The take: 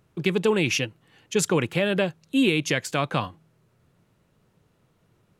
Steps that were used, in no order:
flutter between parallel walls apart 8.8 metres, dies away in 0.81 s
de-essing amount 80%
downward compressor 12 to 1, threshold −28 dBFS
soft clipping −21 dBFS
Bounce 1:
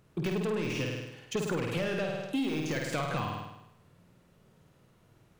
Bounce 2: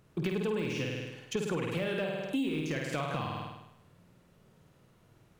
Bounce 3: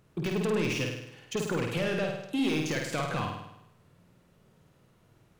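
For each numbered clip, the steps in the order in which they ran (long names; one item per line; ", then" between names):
soft clipping, then de-essing, then flutter between parallel walls, then downward compressor
de-essing, then flutter between parallel walls, then downward compressor, then soft clipping
soft clipping, then downward compressor, then de-essing, then flutter between parallel walls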